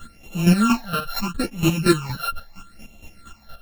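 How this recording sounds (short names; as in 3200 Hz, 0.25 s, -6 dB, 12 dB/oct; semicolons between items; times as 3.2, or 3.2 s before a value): a buzz of ramps at a fixed pitch in blocks of 32 samples; phasing stages 8, 0.76 Hz, lowest notch 280–1500 Hz; chopped level 4.3 Hz, depth 65%, duty 25%; a shimmering, thickened sound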